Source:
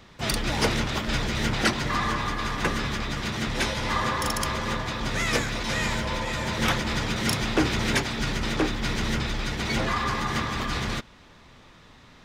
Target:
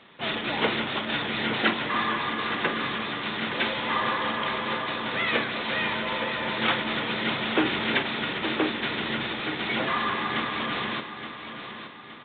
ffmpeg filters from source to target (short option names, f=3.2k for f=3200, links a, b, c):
-filter_complex "[0:a]highpass=230,aemphasis=mode=production:type=50fm,asplit=2[a][b];[b]adelay=45,volume=-11.5dB[c];[a][c]amix=inputs=2:normalize=0,aecho=1:1:869|1738|2607|3476|4345:0.316|0.136|0.0585|0.0251|0.0108" -ar 8000 -c:a adpcm_g726 -b:a 40k